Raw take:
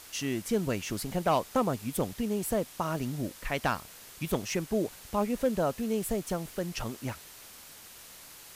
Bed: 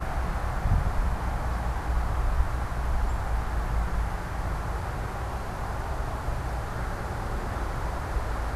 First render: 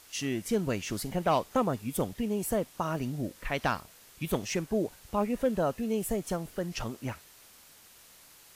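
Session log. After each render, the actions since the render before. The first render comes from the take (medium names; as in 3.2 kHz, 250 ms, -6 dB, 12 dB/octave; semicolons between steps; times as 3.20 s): noise print and reduce 6 dB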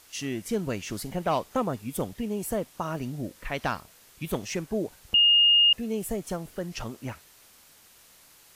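5.14–5.73 s: bleep 2.84 kHz -15.5 dBFS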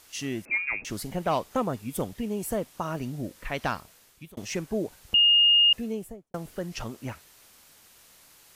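0.45–0.85 s: frequency inversion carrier 2.6 kHz; 3.73–4.37 s: fade out equal-power; 5.77–6.34 s: studio fade out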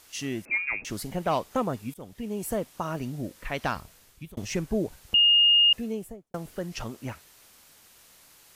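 1.94–2.59 s: fade in equal-power, from -23.5 dB; 3.76–5.00 s: bass shelf 120 Hz +12 dB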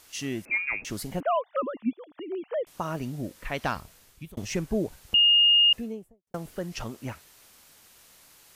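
1.20–2.67 s: formants replaced by sine waves; 5.69–6.27 s: studio fade out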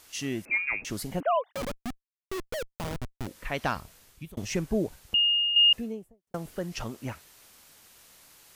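1.52–3.27 s: Schmitt trigger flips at -29.5 dBFS; 4.83–5.56 s: fade out, to -10 dB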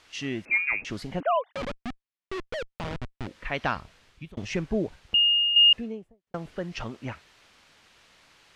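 low-pass 2.8 kHz 12 dB/octave; treble shelf 2.2 kHz +9 dB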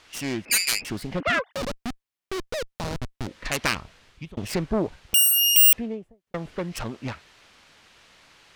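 self-modulated delay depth 0.53 ms; in parallel at -5.5 dB: hard clipper -22 dBFS, distortion -8 dB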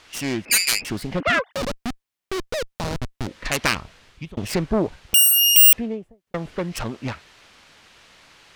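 trim +3.5 dB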